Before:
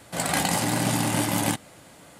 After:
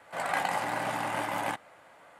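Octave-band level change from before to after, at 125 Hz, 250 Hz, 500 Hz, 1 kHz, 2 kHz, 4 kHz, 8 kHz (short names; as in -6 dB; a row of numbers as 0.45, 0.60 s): -17.5, -15.0, -4.5, -1.5, -3.0, -11.5, -17.5 dB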